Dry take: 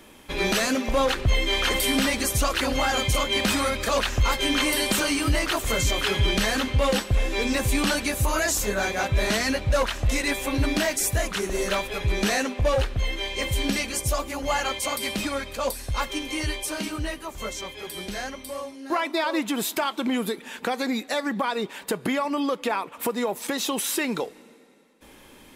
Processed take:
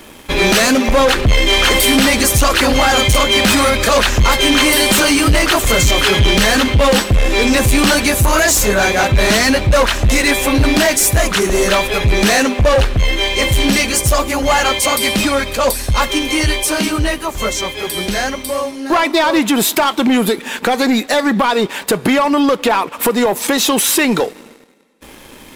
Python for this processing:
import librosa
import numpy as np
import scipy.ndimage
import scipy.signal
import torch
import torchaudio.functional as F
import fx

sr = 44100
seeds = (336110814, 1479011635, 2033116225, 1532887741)

y = fx.leveller(x, sr, passes=2)
y = y * 10.0 ** (7.0 / 20.0)